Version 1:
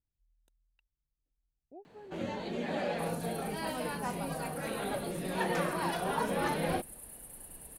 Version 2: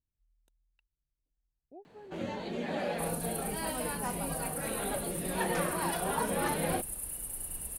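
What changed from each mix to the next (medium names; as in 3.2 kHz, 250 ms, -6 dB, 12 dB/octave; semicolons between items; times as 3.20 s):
second sound +10.0 dB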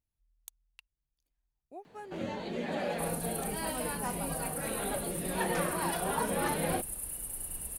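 speech: remove boxcar filter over 40 samples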